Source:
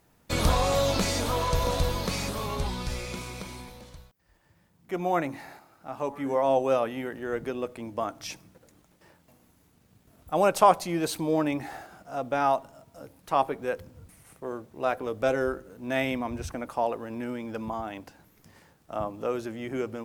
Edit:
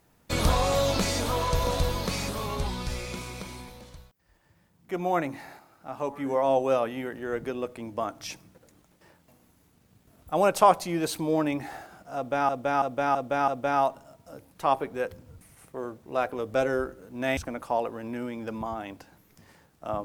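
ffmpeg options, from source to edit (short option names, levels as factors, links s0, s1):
-filter_complex "[0:a]asplit=6[s0][s1][s2][s3][s4][s5];[s0]atrim=end=12.492[s6];[s1]atrim=start=12.158:end=12.492[s7];[s2]atrim=start=12.158:end=12.492[s8];[s3]atrim=start=12.158:end=12.492[s9];[s4]atrim=start=12.158:end=16.052[s10];[s5]atrim=start=16.438[s11];[s6][s7]acrossfade=d=0.004:c1=hsin:c2=hsin[s12];[s12][s8]acrossfade=d=0.004:c1=hsin:c2=hsin[s13];[s13][s9]acrossfade=d=0.004:c1=hsin:c2=hsin[s14];[s14][s10]acrossfade=d=0.004:c1=hsin:c2=hsin[s15];[s15][s11]acrossfade=d=0.004:c1=hsin:c2=hsin"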